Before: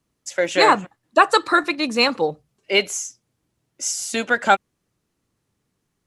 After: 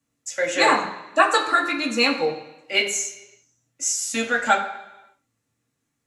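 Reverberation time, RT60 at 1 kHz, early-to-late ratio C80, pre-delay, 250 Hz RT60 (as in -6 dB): 1.0 s, 1.0 s, 11.0 dB, 3 ms, 0.95 s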